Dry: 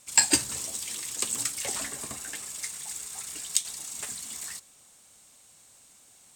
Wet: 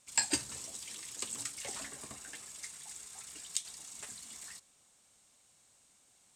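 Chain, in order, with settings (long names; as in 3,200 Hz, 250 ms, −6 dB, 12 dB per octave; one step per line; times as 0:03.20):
Bessel low-pass filter 9,500 Hz, order 2
level −8.5 dB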